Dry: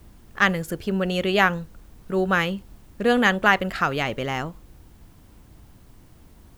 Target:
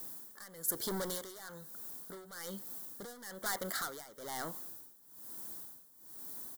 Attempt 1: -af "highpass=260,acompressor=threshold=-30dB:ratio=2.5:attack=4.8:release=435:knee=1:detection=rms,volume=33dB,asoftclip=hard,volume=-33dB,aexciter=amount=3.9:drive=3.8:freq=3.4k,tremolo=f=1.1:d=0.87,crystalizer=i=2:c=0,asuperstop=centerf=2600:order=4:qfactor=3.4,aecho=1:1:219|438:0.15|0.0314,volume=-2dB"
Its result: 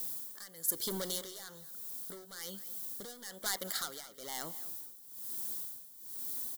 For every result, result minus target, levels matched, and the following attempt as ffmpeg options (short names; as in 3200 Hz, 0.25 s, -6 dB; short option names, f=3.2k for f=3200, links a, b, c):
echo-to-direct +10.5 dB; compressor: peak gain reduction +5 dB; 2000 Hz band -4.5 dB
-af "highpass=260,acompressor=threshold=-30dB:ratio=2.5:attack=4.8:release=435:knee=1:detection=rms,volume=33dB,asoftclip=hard,volume=-33dB,aexciter=amount=3.9:drive=3.8:freq=3.4k,tremolo=f=1.1:d=0.87,crystalizer=i=2:c=0,asuperstop=centerf=2600:order=4:qfactor=3.4,aecho=1:1:219:0.0447,volume=-2dB"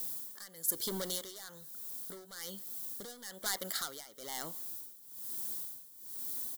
compressor: peak gain reduction +5 dB; 2000 Hz band -4.5 dB
-af "highpass=260,acompressor=threshold=-22dB:ratio=2.5:attack=4.8:release=435:knee=1:detection=rms,volume=33dB,asoftclip=hard,volume=-33dB,aexciter=amount=3.9:drive=3.8:freq=3.4k,tremolo=f=1.1:d=0.87,crystalizer=i=2:c=0,asuperstop=centerf=2600:order=4:qfactor=3.4,aecho=1:1:219:0.0447,volume=-2dB"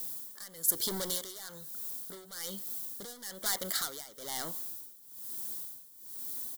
2000 Hz band -6.0 dB
-af "highpass=260,acompressor=threshold=-22dB:ratio=2.5:attack=4.8:release=435:knee=1:detection=rms,volume=33dB,asoftclip=hard,volume=-33dB,aexciter=amount=3.9:drive=3.8:freq=3.4k,tremolo=f=1.1:d=0.87,crystalizer=i=2:c=0,asuperstop=centerf=2600:order=4:qfactor=3.4,highshelf=f=2.1k:t=q:w=1.5:g=-6.5,aecho=1:1:219:0.0447,volume=-2dB"